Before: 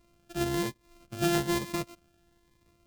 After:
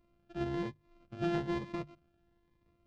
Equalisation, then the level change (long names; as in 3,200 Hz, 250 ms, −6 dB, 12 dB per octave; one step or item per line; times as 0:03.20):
head-to-tape spacing loss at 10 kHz 43 dB
high-shelf EQ 2,600 Hz +9.5 dB
mains-hum notches 50/100/150 Hz
−4.0 dB